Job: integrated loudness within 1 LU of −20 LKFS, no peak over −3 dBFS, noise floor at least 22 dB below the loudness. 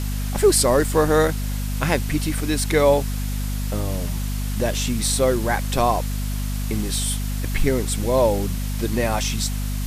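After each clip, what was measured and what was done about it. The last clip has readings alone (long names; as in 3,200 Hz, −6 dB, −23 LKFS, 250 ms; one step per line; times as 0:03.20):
mains hum 50 Hz; hum harmonics up to 250 Hz; level of the hum −23 dBFS; background noise floor −25 dBFS; target noise floor −44 dBFS; integrated loudness −22.0 LKFS; sample peak −5.0 dBFS; target loudness −20.0 LKFS
→ hum removal 50 Hz, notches 5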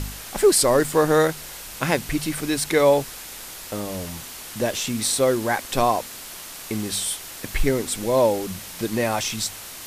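mains hum none found; background noise floor −38 dBFS; target noise floor −45 dBFS
→ broadband denoise 7 dB, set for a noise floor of −38 dBFS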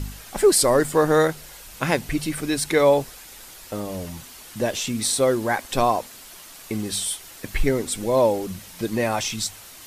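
background noise floor −43 dBFS; target noise floor −45 dBFS
→ broadband denoise 6 dB, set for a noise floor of −43 dBFS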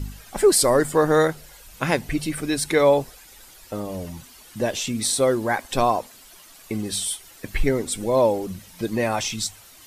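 background noise floor −48 dBFS; integrated loudness −22.5 LKFS; sample peak −6.0 dBFS; target loudness −20.0 LKFS
→ level +2.5 dB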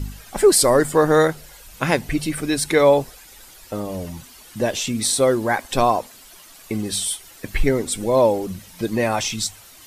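integrated loudness −20.0 LKFS; sample peak −3.5 dBFS; background noise floor −45 dBFS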